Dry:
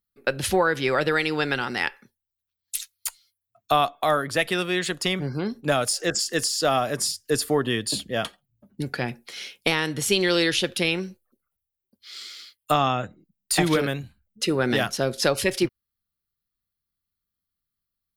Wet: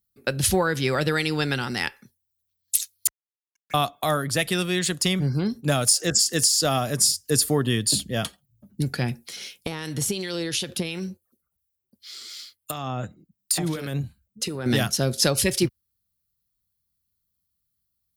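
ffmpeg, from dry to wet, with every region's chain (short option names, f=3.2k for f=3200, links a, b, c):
-filter_complex "[0:a]asettb=1/sr,asplit=3[a][b][c];[a]atrim=end=3.074[d];[b]atrim=start=3.07:end=3.74,asetpts=PTS-STARTPTS,afade=t=in:d=0.004:c=qsin,afade=t=out:st=0.666:d=0.004:c=qsin,lowpass=f=2.5k:t=q:w=0.5098,lowpass=f=2.5k:t=q:w=0.6013,lowpass=f=2.5k:t=q:w=0.9,lowpass=f=2.5k:t=q:w=2.563,afreqshift=-2900,acompressor=threshold=-46dB:ratio=3:attack=3.2:release=140:knee=1:detection=peak,aeval=exprs='sgn(val(0))*max(abs(val(0))-0.00251,0)':c=same[e];[c]atrim=start=3.736[f];[d][e]acrossfade=d=0.004:c1=hsin:c2=qsin[g];[g][f]acrossfade=d=0.004:c1=qsin:c2=hsin,asettb=1/sr,asplit=3[h][i][j];[h]atrim=end=9.364[k];[i]atrim=start=9.36:end=14.66,asetpts=PTS-STARTPTS,afade=t=in:d=0.004:c=qsin,afade=t=out:st=5.296:d=0.004:c=qsin,equalizer=f=630:w=0.48:g=4.5,acompressor=threshold=-22dB:ratio=12:attack=3.2:release=140:knee=1:detection=peak,acrossover=split=1400[l][m];[l]aeval=exprs='val(0)*(1-0.5/2+0.5/2*cos(2*PI*2.8*n/s))':c=same[n];[m]aeval=exprs='val(0)*(1-0.5/2-0.5/2*cos(2*PI*2.8*n/s))':c=same[o];[n][o]amix=inputs=2:normalize=0[p];[j]atrim=start=14.656[q];[k][p]acrossfade=d=0.004:c1=hsin:c2=qsin[r];[r][q]acrossfade=d=0.004:c1=qsin:c2=hsin,highpass=42,bass=f=250:g=11,treble=f=4k:g=11,volume=-3dB"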